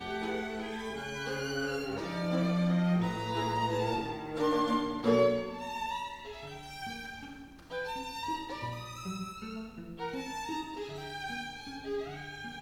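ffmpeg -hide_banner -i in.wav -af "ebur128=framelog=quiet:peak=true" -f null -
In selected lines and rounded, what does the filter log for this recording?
Integrated loudness:
  I:         -34.2 LUFS
  Threshold: -44.3 LUFS
Loudness range:
  LRA:         9.2 LU
  Threshold: -53.9 LUFS
  LRA low:   -39.7 LUFS
  LRA high:  -30.4 LUFS
True peak:
  Peak:      -14.9 dBFS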